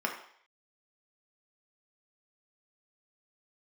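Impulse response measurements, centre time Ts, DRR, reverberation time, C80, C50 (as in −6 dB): 23 ms, 0.5 dB, 0.60 s, 10.5 dB, 7.0 dB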